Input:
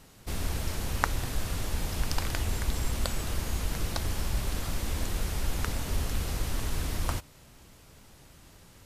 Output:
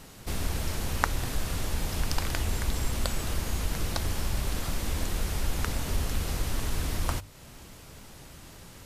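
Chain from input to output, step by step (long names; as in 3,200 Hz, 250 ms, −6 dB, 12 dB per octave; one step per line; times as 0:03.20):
mains-hum notches 50/100 Hz
in parallel at +1 dB: downward compressor, threshold −44 dBFS, peak gain reduction 23 dB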